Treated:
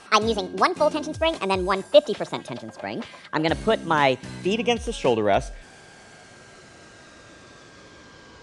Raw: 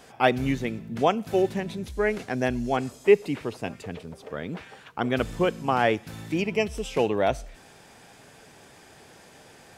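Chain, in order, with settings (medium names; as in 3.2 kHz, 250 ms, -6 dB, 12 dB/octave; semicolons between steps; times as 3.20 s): gliding tape speed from 171% -> 61%; elliptic low-pass 10 kHz, stop band 40 dB; whistle 1.6 kHz -57 dBFS; trim +4 dB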